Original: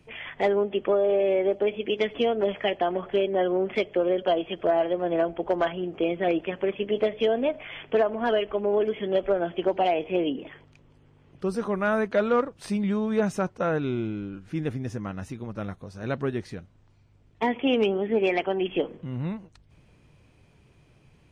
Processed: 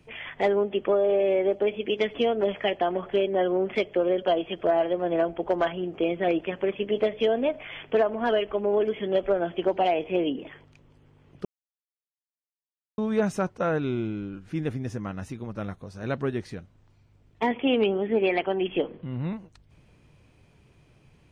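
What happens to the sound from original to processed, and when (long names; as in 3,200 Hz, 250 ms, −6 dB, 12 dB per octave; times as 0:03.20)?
0:11.45–0:12.98: silence
0:17.51–0:19.33: Butterworth low-pass 4,800 Hz 96 dB per octave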